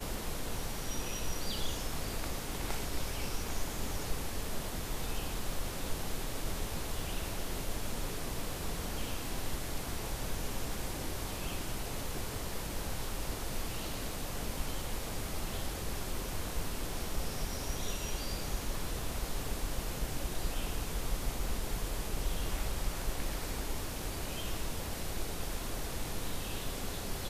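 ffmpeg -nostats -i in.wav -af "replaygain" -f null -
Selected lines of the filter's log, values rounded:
track_gain = +24.0 dB
track_peak = 0.074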